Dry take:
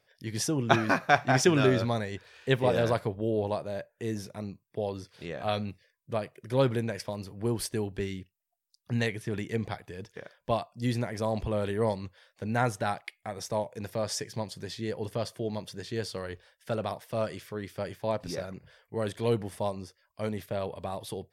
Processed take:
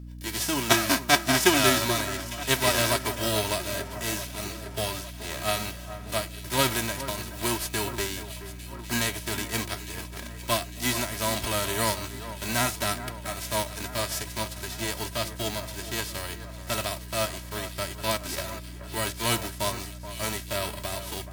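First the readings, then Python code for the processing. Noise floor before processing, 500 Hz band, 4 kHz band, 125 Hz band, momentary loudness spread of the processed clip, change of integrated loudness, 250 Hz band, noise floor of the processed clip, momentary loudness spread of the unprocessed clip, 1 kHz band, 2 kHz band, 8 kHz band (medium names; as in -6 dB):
-78 dBFS, -1.5 dB, +11.5 dB, -1.5 dB, 13 LU, +3.5 dB, 0.0 dB, -40 dBFS, 14 LU, +3.0 dB, +5.5 dB, +12.0 dB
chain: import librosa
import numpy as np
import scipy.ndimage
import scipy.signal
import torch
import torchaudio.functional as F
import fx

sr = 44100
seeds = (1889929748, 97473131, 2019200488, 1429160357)

p1 = fx.envelope_flatten(x, sr, power=0.3)
p2 = p1 + 0.76 * np.pad(p1, (int(3.1 * sr / 1000.0), 0))[:len(p1)]
p3 = fx.add_hum(p2, sr, base_hz=60, snr_db=11)
y = p3 + fx.echo_alternate(p3, sr, ms=427, hz=2000.0, feedback_pct=76, wet_db=-12.0, dry=0)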